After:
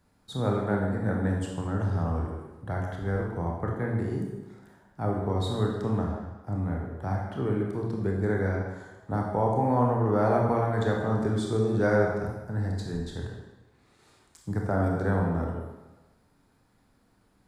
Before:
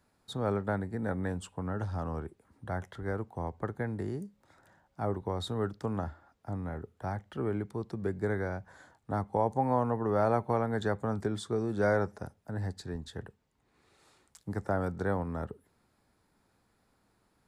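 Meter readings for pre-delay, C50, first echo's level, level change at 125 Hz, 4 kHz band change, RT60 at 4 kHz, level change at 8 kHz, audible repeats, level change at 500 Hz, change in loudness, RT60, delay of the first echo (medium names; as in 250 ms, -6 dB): 23 ms, 2.0 dB, no echo, +7.5 dB, +3.0 dB, 1.0 s, no reading, no echo, +4.5 dB, +5.0 dB, 1.2 s, no echo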